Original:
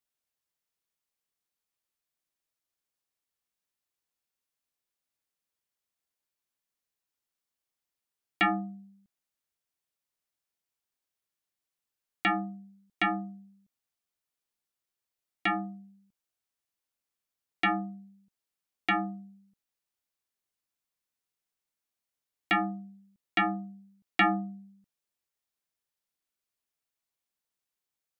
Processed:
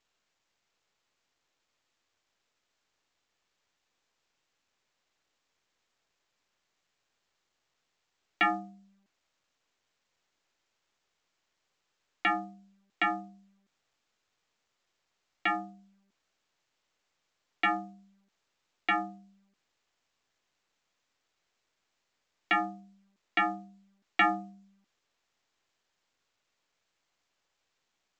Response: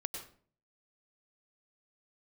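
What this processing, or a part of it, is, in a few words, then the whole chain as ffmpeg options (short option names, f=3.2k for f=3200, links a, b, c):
telephone: -af "highpass=330,lowpass=3.6k" -ar 16000 -c:a pcm_mulaw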